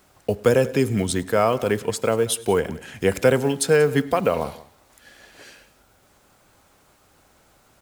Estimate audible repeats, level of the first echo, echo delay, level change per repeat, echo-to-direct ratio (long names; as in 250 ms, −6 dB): 2, −23.5 dB, 103 ms, repeats not evenly spaced, −18.5 dB